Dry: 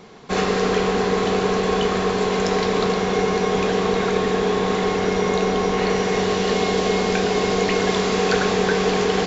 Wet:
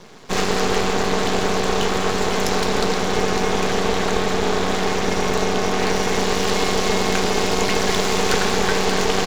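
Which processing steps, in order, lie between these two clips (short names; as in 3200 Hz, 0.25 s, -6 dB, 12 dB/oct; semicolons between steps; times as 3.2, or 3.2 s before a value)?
high shelf 5300 Hz +10 dB; half-wave rectifier; speakerphone echo 0.22 s, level -8 dB; gain +3.5 dB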